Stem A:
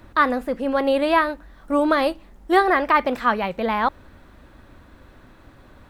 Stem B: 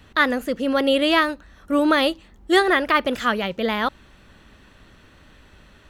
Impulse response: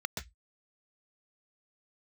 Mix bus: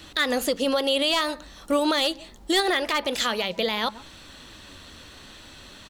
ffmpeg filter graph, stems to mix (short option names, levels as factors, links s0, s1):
-filter_complex "[0:a]flanger=delay=5.9:depth=9.1:regen=53:speed=0.48:shape=triangular,equalizer=f=240:w=0.37:g=10,volume=0.501,asplit=2[s0][s1];[s1]volume=0.126[s2];[1:a]equalizer=f=250:t=o:w=1:g=-11,equalizer=f=500:t=o:w=1:g=5,equalizer=f=1000:t=o:w=1:g=5,equalizer=f=4000:t=o:w=1:g=8,equalizer=f=8000:t=o:w=1:g=5,adelay=0.4,volume=0.668[s3];[2:a]atrim=start_sample=2205[s4];[s2][s4]afir=irnorm=-1:irlink=0[s5];[s0][s3][s5]amix=inputs=3:normalize=0,highshelf=f=2400:g=12,asoftclip=type=hard:threshold=0.631,alimiter=limit=0.2:level=0:latency=1:release=199"